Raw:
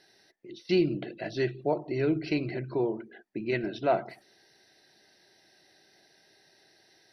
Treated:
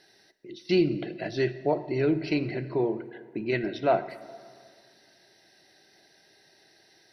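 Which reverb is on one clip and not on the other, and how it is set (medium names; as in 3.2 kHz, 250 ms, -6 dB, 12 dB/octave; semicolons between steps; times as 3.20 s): plate-style reverb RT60 2.1 s, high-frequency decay 0.65×, DRR 13.5 dB; trim +2 dB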